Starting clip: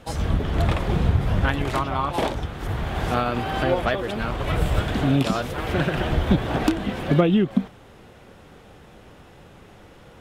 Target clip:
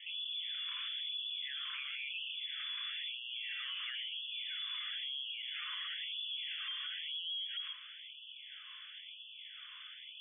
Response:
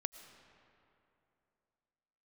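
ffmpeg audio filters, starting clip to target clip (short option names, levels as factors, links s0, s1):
-filter_complex "[1:a]atrim=start_sample=2205,atrim=end_sample=6174[s0];[0:a][s0]afir=irnorm=-1:irlink=0,lowpass=f=3000:t=q:w=0.5098,lowpass=f=3000:t=q:w=0.6013,lowpass=f=3000:t=q:w=0.9,lowpass=f=3000:t=q:w=2.563,afreqshift=-3500,alimiter=level_in=2.37:limit=0.0631:level=0:latency=1:release=80,volume=0.422,tiltshelf=f=930:g=9,afftfilt=real='re*gte(b*sr/1024,980*pow(2600/980,0.5+0.5*sin(2*PI*1*pts/sr)))':imag='im*gte(b*sr/1024,980*pow(2600/980,0.5+0.5*sin(2*PI*1*pts/sr)))':win_size=1024:overlap=0.75,volume=1.78"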